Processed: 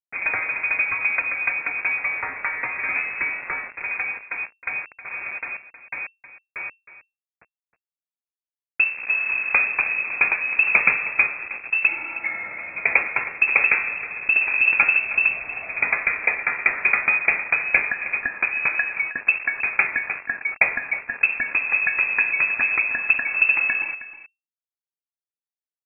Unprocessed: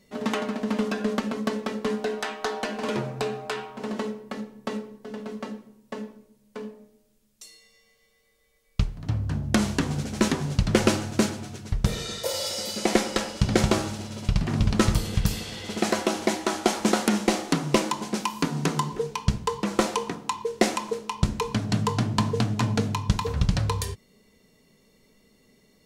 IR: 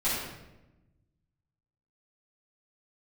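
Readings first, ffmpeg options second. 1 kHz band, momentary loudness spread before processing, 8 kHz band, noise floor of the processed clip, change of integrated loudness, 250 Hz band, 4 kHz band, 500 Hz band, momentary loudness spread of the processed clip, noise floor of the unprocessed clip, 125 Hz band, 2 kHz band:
−2.0 dB, 12 LU, below −40 dB, below −85 dBFS, +6.5 dB, −21.5 dB, below −35 dB, −12.0 dB, 13 LU, −64 dBFS, below −25 dB, +17.0 dB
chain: -af "acrusher=bits=5:mix=0:aa=0.000001,aecho=1:1:315:0.188,lowpass=frequency=2300:width_type=q:width=0.5098,lowpass=frequency=2300:width_type=q:width=0.6013,lowpass=frequency=2300:width_type=q:width=0.9,lowpass=frequency=2300:width_type=q:width=2.563,afreqshift=-2700,volume=3dB"

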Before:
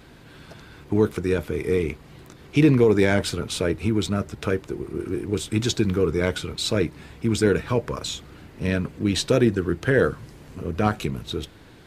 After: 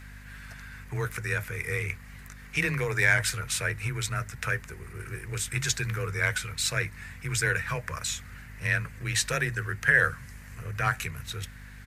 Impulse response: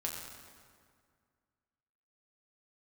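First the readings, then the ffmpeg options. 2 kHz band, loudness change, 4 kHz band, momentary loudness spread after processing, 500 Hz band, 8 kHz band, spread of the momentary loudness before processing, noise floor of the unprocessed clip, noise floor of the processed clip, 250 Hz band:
+5.5 dB, −5.0 dB, −4.0 dB, 19 LU, −14.5 dB, +3.0 dB, 12 LU, −48 dBFS, −46 dBFS, −18.5 dB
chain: -af "afreqshift=20,firequalizer=gain_entry='entry(110,0);entry(230,-25);entry(460,-13);entry(1800,10);entry(3300,-5);entry(6200,4);entry(12000,7)':delay=0.05:min_phase=1,aeval=exprs='val(0)+0.00631*(sin(2*PI*50*n/s)+sin(2*PI*2*50*n/s)/2+sin(2*PI*3*50*n/s)/3+sin(2*PI*4*50*n/s)/4+sin(2*PI*5*50*n/s)/5)':channel_layout=same,volume=-1.5dB"

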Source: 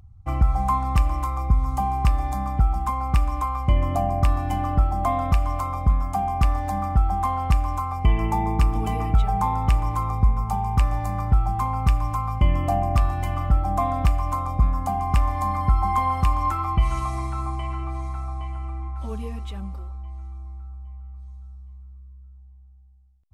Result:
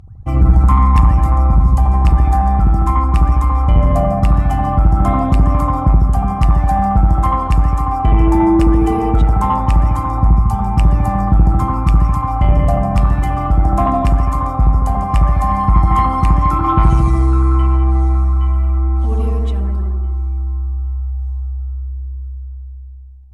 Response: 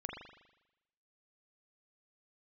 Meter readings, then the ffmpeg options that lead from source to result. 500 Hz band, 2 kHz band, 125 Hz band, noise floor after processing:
+10.0 dB, +5.5 dB, +10.5 dB, −27 dBFS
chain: -filter_complex "[0:a]aphaser=in_gain=1:out_gain=1:delay=3.1:decay=0.32:speed=0.18:type=triangular[link_01];[1:a]atrim=start_sample=2205,afade=type=out:start_time=0.25:duration=0.01,atrim=end_sample=11466,asetrate=23373,aresample=44100[link_02];[link_01][link_02]afir=irnorm=-1:irlink=0,acontrast=86,equalizer=frequency=230:width=0.51:gain=5,volume=-3dB"

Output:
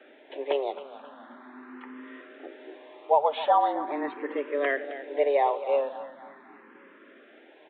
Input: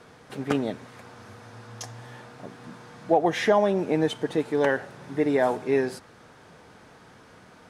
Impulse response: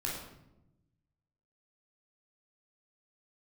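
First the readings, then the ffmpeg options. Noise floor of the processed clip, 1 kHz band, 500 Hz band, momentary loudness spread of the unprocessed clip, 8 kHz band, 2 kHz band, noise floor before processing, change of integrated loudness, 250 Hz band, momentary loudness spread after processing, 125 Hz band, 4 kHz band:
−54 dBFS, +3.5 dB, −2.5 dB, 22 LU, below −35 dB, −3.5 dB, −52 dBFS, −2.0 dB, −11.0 dB, 22 LU, below −30 dB, −4.5 dB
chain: -filter_complex "[0:a]afreqshift=140,aresample=8000,aresample=44100,asplit=2[link_01][link_02];[link_02]aecho=0:1:266|532|798|1064|1330:0.211|0.108|0.055|0.028|0.0143[link_03];[link_01][link_03]amix=inputs=2:normalize=0,asplit=2[link_04][link_05];[link_05]afreqshift=0.41[link_06];[link_04][link_06]amix=inputs=2:normalize=1"

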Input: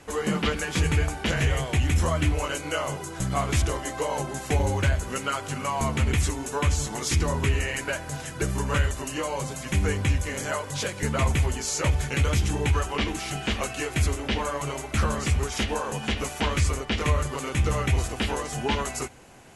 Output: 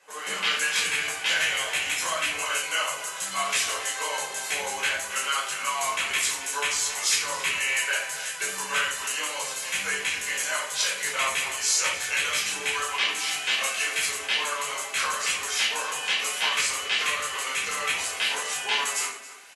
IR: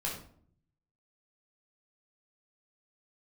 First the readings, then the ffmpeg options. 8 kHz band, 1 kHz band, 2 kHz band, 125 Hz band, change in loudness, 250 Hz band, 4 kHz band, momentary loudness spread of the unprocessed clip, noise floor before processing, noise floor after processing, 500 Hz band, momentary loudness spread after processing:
+6.5 dB, 0.0 dB, +6.0 dB, below −30 dB, +1.5 dB, −19.5 dB, +7.5 dB, 5 LU, −37 dBFS, −36 dBFS, −8.0 dB, 5 LU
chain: -filter_complex "[0:a]highpass=710,asplit=2[link_01][link_02];[link_02]adelay=274.1,volume=-13dB,highshelf=frequency=4000:gain=-6.17[link_03];[link_01][link_03]amix=inputs=2:normalize=0[link_04];[1:a]atrim=start_sample=2205[link_05];[link_04][link_05]afir=irnorm=-1:irlink=0,acrossover=split=1600[link_06][link_07];[link_07]dynaudnorm=framelen=100:gausssize=5:maxgain=11.5dB[link_08];[link_06][link_08]amix=inputs=2:normalize=0,volume=-6dB"

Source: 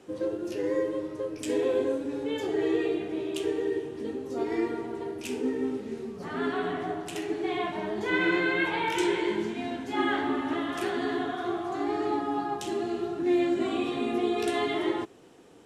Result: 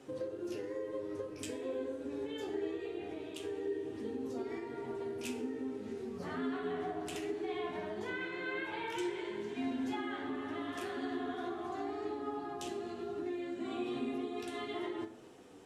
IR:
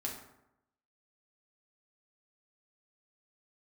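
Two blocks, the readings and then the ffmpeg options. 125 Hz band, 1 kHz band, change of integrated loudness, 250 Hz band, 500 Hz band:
−8.5 dB, −10.5 dB, −10.0 dB, −10.0 dB, −10.0 dB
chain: -filter_complex "[0:a]acompressor=threshold=-35dB:ratio=6,flanger=delay=7.3:depth=5.6:regen=51:speed=0.21:shape=triangular,asplit=2[link_01][link_02];[1:a]atrim=start_sample=2205[link_03];[link_02][link_03]afir=irnorm=-1:irlink=0,volume=-3dB[link_04];[link_01][link_04]amix=inputs=2:normalize=0,volume=-2dB"

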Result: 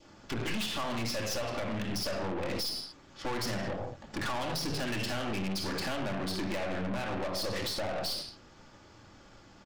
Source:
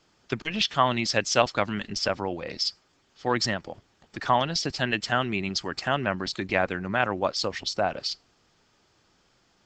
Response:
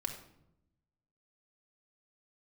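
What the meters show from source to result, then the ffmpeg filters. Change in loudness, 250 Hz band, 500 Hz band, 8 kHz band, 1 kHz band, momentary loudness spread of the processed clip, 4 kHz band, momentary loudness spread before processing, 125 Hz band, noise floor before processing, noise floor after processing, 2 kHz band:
−7.5 dB, −4.0 dB, −7.0 dB, −5.5 dB, −10.5 dB, 5 LU, −6.5 dB, 9 LU, −4.0 dB, −66 dBFS, −56 dBFS, −9.0 dB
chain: -filter_complex "[0:a]asplit=2[link_01][link_02];[link_02]adynamicsmooth=sensitivity=5.5:basefreq=2700,volume=-2dB[link_03];[link_01][link_03]amix=inputs=2:normalize=0[link_04];[1:a]atrim=start_sample=2205,afade=type=out:start_time=0.29:duration=0.01,atrim=end_sample=13230[link_05];[link_04][link_05]afir=irnorm=-1:irlink=0,acompressor=threshold=-28dB:ratio=12,aresample=32000,aresample=44100,adynamicequalizer=threshold=0.00355:dfrequency=1400:dqfactor=2:tfrequency=1400:tqfactor=2:attack=5:release=100:ratio=0.375:range=3:mode=cutabove:tftype=bell,aeval=exprs='(tanh(100*val(0)+0.6)-tanh(0.6))/100':channel_layout=same,volume=8dB"

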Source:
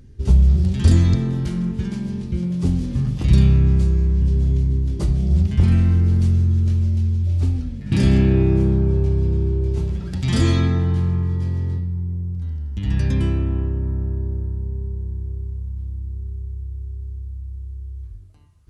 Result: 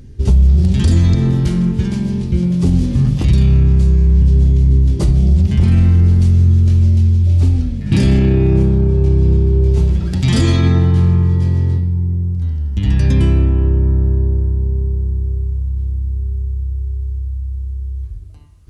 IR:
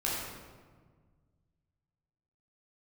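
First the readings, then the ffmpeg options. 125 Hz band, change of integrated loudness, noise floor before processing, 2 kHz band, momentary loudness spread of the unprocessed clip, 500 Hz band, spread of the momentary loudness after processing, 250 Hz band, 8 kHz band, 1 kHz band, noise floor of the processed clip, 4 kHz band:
+6.0 dB, +5.5 dB, −32 dBFS, +4.0 dB, 15 LU, +5.0 dB, 10 LU, +5.0 dB, can't be measured, +4.5 dB, −23 dBFS, +5.0 dB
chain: -filter_complex "[0:a]equalizer=frequency=1400:width=1.5:gain=-2.5,asplit=2[link_01][link_02];[1:a]atrim=start_sample=2205,adelay=28[link_03];[link_02][link_03]afir=irnorm=-1:irlink=0,volume=-24.5dB[link_04];[link_01][link_04]amix=inputs=2:normalize=0,alimiter=level_in=11.5dB:limit=-1dB:release=50:level=0:latency=1,volume=-3.5dB"

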